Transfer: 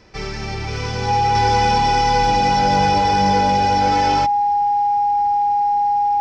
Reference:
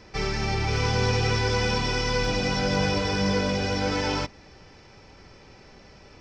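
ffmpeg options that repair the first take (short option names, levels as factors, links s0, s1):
-af "bandreject=f=820:w=30,asetnsamples=n=441:p=0,asendcmd='1.35 volume volume -4dB',volume=1"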